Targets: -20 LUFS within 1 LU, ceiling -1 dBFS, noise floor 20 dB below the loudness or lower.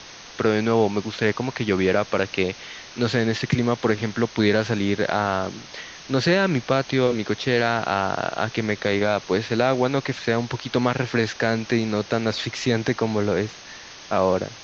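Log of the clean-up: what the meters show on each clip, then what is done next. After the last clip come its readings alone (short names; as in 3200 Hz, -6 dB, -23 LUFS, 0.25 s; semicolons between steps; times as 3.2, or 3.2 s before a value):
noise floor -42 dBFS; noise floor target -43 dBFS; loudness -23.0 LUFS; peak -5.0 dBFS; loudness target -20.0 LUFS
-> denoiser 6 dB, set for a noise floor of -42 dBFS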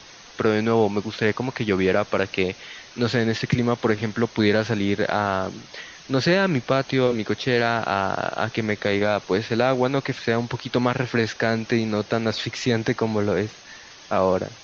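noise floor -45 dBFS; loudness -23.0 LUFS; peak -5.5 dBFS; loudness target -20.0 LUFS
-> gain +3 dB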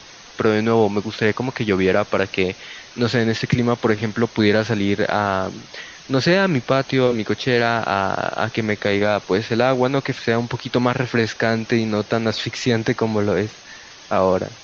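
loudness -20.0 LUFS; peak -2.5 dBFS; noise floor -42 dBFS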